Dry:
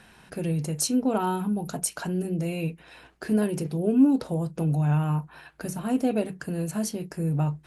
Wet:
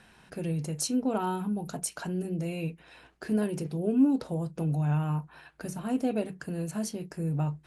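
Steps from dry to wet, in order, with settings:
low-pass filter 11,000 Hz 12 dB per octave
level −4 dB

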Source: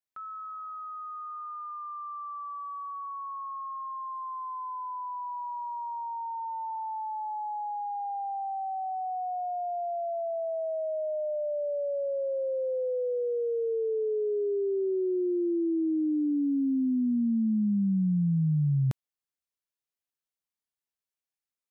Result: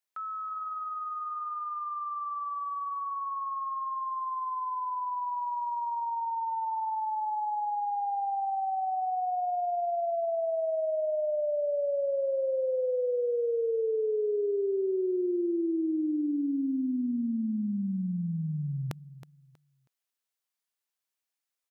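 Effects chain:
high-pass filter 560 Hz 6 dB per octave
repeating echo 320 ms, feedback 26%, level −15 dB
level +4.5 dB

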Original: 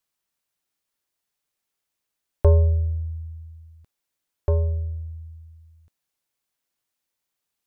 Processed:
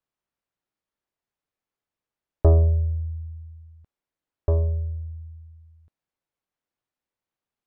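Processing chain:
low-pass filter 1,200 Hz 6 dB per octave
highs frequency-modulated by the lows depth 0.44 ms

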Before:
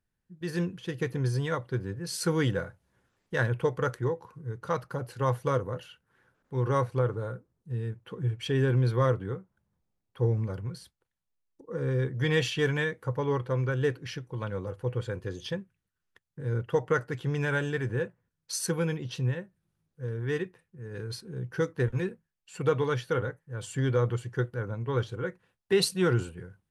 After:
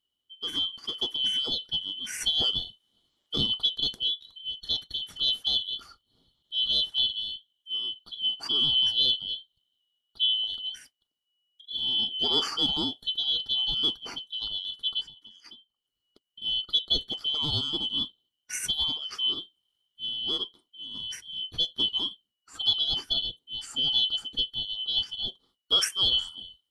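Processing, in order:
band-splitting scrambler in four parts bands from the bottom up 2413
0:15.01–0:16.42: downward compressor 20 to 1, threshold −46 dBFS, peak gain reduction 19.5 dB

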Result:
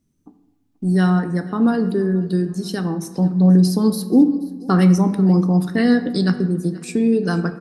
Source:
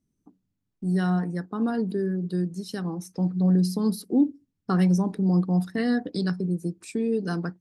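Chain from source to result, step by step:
repeating echo 483 ms, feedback 41%, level −22 dB
on a send at −9 dB: convolution reverb RT60 1.1 s, pre-delay 3 ms
on the sum: level +8 dB

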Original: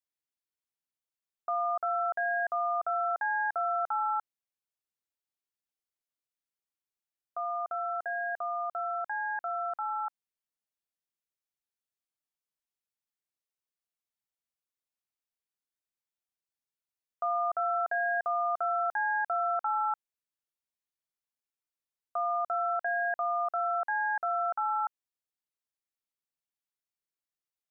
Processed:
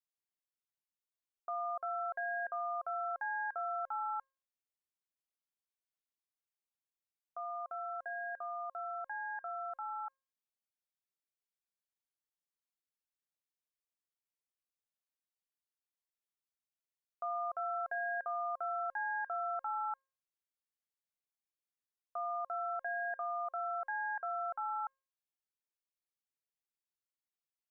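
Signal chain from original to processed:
tuned comb filter 540 Hz, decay 0.41 s, mix 60%

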